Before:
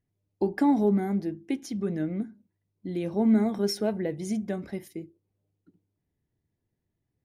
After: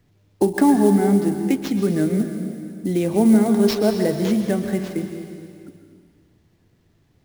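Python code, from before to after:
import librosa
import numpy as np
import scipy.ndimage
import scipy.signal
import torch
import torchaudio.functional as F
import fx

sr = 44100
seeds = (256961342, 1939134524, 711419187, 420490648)

y = fx.sample_hold(x, sr, seeds[0], rate_hz=9900.0, jitter_pct=20)
y = fx.rev_plate(y, sr, seeds[1], rt60_s=1.6, hf_ratio=1.0, predelay_ms=110, drr_db=7.0)
y = fx.band_squash(y, sr, depth_pct=40)
y = y * librosa.db_to_amplitude(8.0)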